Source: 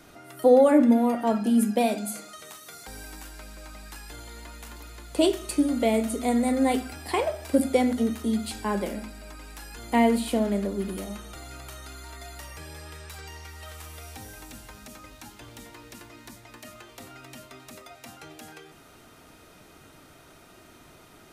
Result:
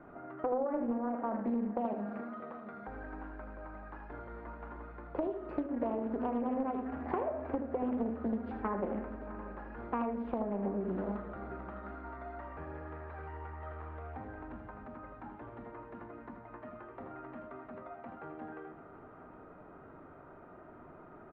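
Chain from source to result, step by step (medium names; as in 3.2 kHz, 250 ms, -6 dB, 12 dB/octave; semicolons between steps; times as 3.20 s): low-pass 1.4 kHz 24 dB/octave; bass shelf 160 Hz -7 dB; compression 12:1, threshold -32 dBFS, peak gain reduction 19 dB; multi-tap echo 80/631/745 ms -8/-19/-17 dB; on a send at -13 dB: reverberation RT60 2.8 s, pre-delay 5 ms; on the sum: loudspeaker Doppler distortion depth 0.48 ms; trim +1 dB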